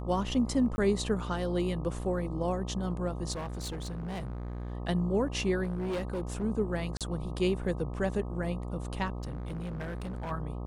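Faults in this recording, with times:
buzz 60 Hz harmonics 21 -37 dBFS
0.76–0.78 s: dropout 20 ms
3.32–4.72 s: clipped -33.5 dBFS
5.63–6.44 s: clipped -29.5 dBFS
6.97–7.01 s: dropout 37 ms
9.22–10.32 s: clipped -33.5 dBFS

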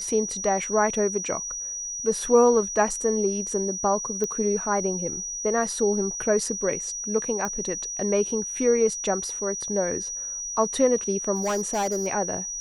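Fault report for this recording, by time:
whine 5.8 kHz -30 dBFS
4.24 s: pop -15 dBFS
7.45 s: pop -16 dBFS
11.35–12.08 s: clipped -21.5 dBFS

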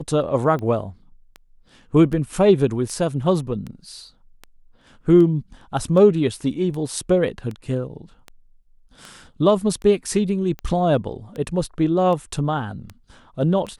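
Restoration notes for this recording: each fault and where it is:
tick 78 rpm -20 dBFS

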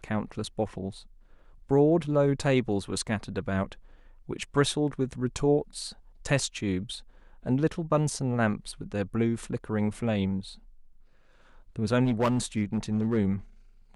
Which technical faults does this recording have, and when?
12.04–13.17 s: clipped -20 dBFS

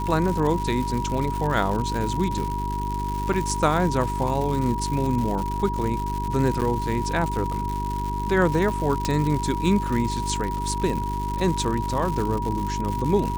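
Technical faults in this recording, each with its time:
crackle 220 per s -27 dBFS
hum 50 Hz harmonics 8 -29 dBFS
whine 960 Hz -28 dBFS
3.33–3.34 s: dropout 5.9 ms
6.61–6.62 s: dropout 8.4 ms
9.05 s: pop

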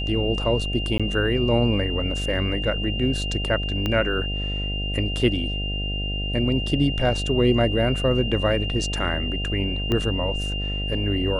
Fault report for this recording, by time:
buzz 50 Hz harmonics 15 -28 dBFS
whine 2.8 kHz -29 dBFS
0.98–1.00 s: dropout 16 ms
3.86 s: pop -12 dBFS
9.92 s: pop -12 dBFS

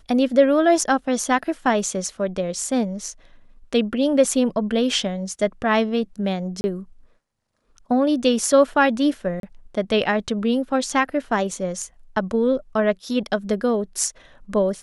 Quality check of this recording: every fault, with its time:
6.61–6.64 s: dropout 30 ms
9.40–9.43 s: dropout 32 ms

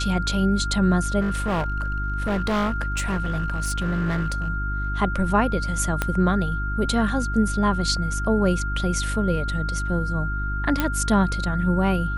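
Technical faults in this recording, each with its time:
hum 50 Hz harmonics 7 -27 dBFS
whine 1.4 kHz -29 dBFS
1.20–4.48 s: clipped -20 dBFS
6.02 s: pop -8 dBFS
10.80 s: pop -8 dBFS

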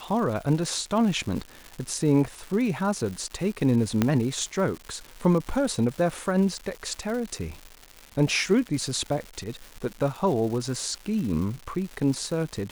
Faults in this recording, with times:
crackle 310 per s -33 dBFS
4.02 s: pop -8 dBFS

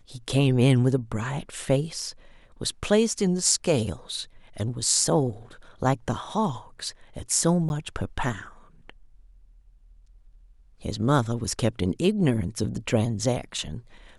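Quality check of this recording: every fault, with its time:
7.69–7.70 s: dropout 11 ms

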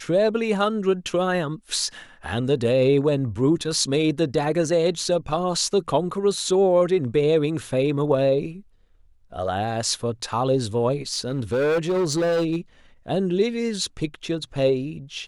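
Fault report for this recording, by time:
11.13–12.56 s: clipped -18.5 dBFS

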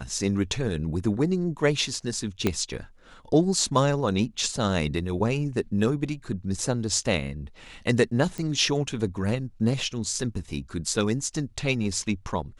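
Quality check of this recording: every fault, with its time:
2.47 s: pop -9 dBFS
8.38 s: pop -20 dBFS

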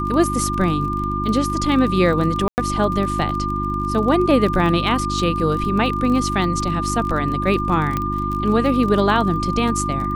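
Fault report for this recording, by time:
crackle 34 per s -25 dBFS
hum 50 Hz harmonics 7 -25 dBFS
whine 1.2 kHz -23 dBFS
2.48–2.58 s: dropout 99 ms
7.97 s: pop -9 dBFS

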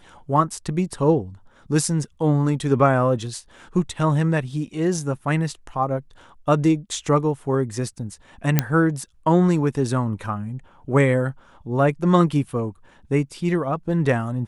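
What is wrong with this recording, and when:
8.59 s: pop -2 dBFS

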